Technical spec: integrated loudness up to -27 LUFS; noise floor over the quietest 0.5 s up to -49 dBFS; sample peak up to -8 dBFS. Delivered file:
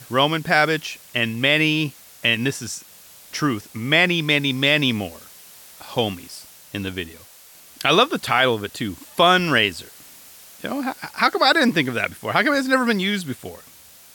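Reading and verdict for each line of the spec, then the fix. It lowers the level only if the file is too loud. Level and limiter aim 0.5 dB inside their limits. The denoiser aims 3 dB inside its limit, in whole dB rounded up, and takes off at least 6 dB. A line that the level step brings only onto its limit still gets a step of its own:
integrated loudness -20.0 LUFS: fail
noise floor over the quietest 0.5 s -47 dBFS: fail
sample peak -3.5 dBFS: fail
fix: gain -7.5 dB

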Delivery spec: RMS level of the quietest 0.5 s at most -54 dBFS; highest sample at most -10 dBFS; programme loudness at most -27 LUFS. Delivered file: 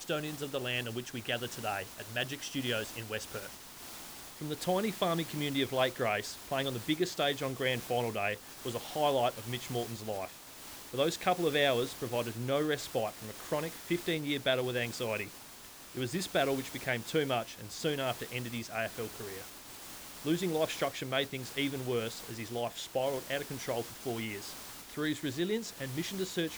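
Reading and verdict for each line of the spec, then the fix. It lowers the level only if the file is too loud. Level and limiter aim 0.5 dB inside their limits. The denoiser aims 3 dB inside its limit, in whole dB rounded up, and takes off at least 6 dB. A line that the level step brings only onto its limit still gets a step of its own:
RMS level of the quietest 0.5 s -51 dBFS: fail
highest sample -15.0 dBFS: OK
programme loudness -34.5 LUFS: OK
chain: denoiser 6 dB, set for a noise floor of -51 dBFS

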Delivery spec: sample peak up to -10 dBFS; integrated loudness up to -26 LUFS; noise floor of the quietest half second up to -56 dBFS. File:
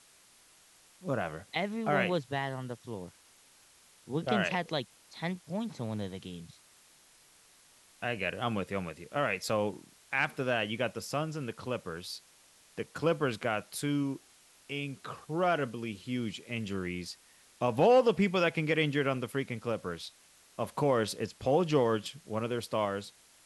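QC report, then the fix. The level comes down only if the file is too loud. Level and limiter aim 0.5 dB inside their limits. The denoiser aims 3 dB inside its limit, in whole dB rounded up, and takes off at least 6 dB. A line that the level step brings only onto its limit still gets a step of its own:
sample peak -13.5 dBFS: OK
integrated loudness -32.5 LUFS: OK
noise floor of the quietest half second -61 dBFS: OK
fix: none

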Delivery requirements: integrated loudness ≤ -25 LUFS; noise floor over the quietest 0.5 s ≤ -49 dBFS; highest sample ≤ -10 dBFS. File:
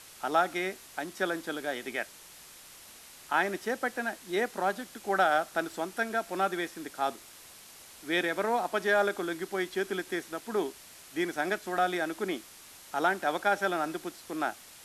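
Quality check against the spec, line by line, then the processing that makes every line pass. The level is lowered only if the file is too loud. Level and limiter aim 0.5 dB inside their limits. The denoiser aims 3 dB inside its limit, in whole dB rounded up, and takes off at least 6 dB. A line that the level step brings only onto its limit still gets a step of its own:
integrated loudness -31.0 LUFS: OK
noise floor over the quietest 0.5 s -51 dBFS: OK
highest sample -13.5 dBFS: OK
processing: none

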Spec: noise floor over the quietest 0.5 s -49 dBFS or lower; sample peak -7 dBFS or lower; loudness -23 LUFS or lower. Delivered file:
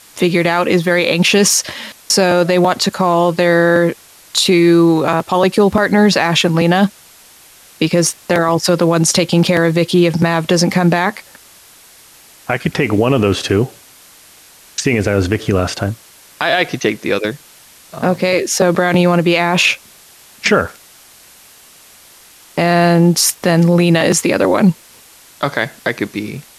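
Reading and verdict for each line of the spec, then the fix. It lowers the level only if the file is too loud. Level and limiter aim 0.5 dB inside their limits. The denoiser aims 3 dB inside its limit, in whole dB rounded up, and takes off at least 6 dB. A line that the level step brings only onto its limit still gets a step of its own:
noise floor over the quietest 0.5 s -43 dBFS: fail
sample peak -2.0 dBFS: fail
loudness -14.0 LUFS: fail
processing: gain -9.5 dB

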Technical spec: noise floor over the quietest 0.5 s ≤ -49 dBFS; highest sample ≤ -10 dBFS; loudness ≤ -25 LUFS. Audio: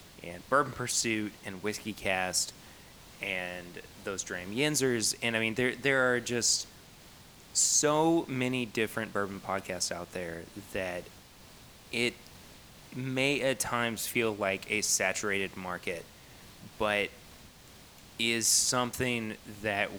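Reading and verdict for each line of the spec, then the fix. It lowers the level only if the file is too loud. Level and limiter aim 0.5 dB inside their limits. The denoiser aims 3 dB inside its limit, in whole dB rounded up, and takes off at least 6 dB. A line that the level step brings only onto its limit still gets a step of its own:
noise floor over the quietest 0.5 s -54 dBFS: OK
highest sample -12.0 dBFS: OK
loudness -30.0 LUFS: OK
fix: none

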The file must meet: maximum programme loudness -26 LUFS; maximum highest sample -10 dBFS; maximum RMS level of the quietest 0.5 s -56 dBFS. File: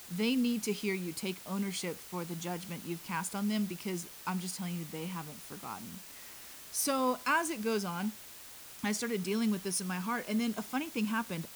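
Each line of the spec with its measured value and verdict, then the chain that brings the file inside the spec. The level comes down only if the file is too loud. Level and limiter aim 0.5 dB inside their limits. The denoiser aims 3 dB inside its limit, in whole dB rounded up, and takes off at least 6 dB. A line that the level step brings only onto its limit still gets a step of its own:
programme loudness -34.5 LUFS: OK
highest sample -19.0 dBFS: OK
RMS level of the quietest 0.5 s -50 dBFS: fail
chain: denoiser 9 dB, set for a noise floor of -50 dBFS

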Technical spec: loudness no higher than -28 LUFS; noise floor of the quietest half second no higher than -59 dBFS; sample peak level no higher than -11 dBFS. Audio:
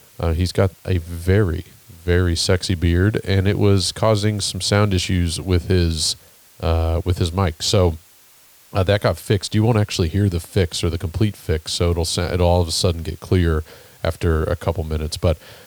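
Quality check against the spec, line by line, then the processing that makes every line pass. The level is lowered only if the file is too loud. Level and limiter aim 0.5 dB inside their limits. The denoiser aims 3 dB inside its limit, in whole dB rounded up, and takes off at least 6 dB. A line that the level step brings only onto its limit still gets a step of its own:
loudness -20.0 LUFS: fail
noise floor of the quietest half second -50 dBFS: fail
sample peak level -4.0 dBFS: fail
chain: denoiser 6 dB, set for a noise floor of -50 dBFS; gain -8.5 dB

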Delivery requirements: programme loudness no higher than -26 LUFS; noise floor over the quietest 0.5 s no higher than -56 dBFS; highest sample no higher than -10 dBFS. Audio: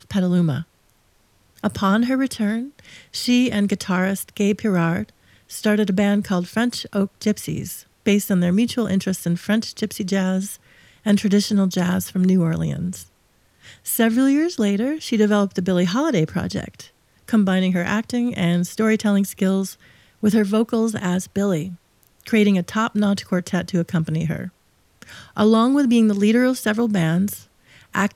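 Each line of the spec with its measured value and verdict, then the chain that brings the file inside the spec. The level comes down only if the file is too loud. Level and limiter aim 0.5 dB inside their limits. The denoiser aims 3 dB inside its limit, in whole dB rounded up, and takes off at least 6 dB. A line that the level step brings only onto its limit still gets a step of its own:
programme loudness -20.5 LUFS: fail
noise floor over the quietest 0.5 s -60 dBFS: OK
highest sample -5.5 dBFS: fail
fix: gain -6 dB

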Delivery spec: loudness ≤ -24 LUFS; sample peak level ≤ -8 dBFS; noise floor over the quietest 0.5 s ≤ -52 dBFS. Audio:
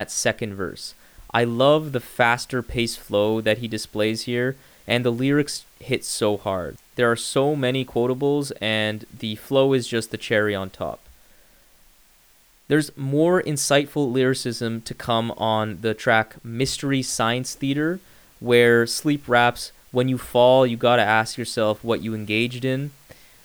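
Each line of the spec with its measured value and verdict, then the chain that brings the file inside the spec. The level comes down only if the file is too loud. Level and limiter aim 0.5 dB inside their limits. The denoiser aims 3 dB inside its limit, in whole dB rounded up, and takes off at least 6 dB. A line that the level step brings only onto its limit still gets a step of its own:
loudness -22.0 LUFS: fail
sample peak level -4.5 dBFS: fail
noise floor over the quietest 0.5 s -56 dBFS: OK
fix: gain -2.5 dB; limiter -8.5 dBFS

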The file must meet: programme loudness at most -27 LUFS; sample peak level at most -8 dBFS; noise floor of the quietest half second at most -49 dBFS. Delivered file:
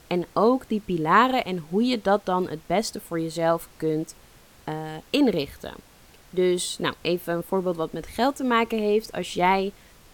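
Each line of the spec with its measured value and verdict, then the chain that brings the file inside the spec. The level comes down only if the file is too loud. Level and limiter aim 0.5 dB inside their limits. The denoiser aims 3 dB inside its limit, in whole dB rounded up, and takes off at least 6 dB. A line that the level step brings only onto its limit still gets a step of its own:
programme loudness -24.5 LUFS: fail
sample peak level -5.5 dBFS: fail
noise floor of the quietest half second -52 dBFS: OK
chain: gain -3 dB

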